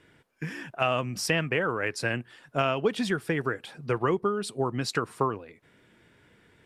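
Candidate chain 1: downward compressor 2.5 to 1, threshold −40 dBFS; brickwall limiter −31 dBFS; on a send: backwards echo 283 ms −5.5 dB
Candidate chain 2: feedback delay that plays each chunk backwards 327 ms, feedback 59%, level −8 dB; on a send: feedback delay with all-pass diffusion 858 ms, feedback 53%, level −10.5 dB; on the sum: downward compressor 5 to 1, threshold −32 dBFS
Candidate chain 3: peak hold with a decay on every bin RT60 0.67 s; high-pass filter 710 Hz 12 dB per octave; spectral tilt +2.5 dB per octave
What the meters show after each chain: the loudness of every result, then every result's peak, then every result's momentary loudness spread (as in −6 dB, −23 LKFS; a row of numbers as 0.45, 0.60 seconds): −41.5, −36.0, −26.5 LKFS; −28.0, −16.5, −4.5 dBFS; 18, 4, 13 LU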